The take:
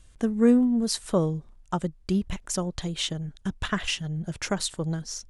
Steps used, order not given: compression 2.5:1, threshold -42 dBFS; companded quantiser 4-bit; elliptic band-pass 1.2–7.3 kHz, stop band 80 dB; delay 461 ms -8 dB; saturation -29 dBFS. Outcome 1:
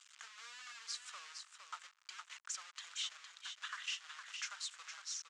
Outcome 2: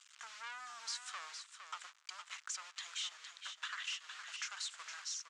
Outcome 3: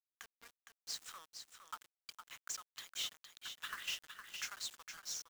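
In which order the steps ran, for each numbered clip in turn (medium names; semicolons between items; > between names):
compression > companded quantiser > delay > saturation > elliptic band-pass; companded quantiser > saturation > elliptic band-pass > compression > delay; compression > saturation > elliptic band-pass > companded quantiser > delay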